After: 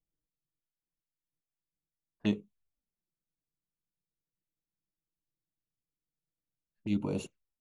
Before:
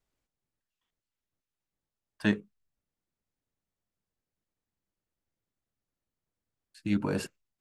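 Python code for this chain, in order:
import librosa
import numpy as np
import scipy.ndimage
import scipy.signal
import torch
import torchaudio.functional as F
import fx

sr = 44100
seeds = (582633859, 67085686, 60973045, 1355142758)

y = fx.env_flanger(x, sr, rest_ms=6.3, full_db=-31.5)
y = fx.env_lowpass(y, sr, base_hz=380.0, full_db=-31.0)
y = y * 10.0 ** (-2.5 / 20.0)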